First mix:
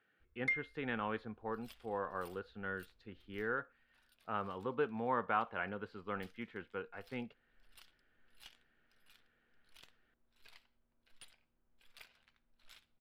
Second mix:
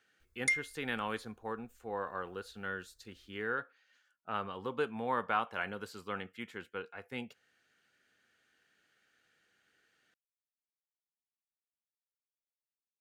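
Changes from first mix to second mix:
second sound: muted
master: remove high-frequency loss of the air 400 metres

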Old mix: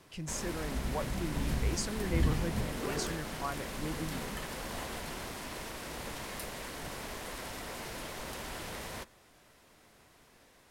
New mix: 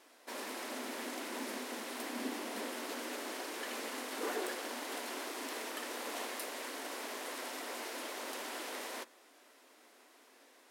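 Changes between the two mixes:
speech: muted
second sound: entry +1.40 s
master: add linear-phase brick-wall high-pass 230 Hz

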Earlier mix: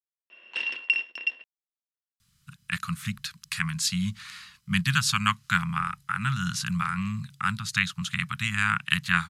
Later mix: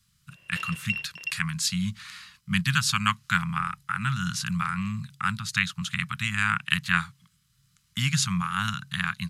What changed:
speech: entry −2.20 s
background −5.5 dB

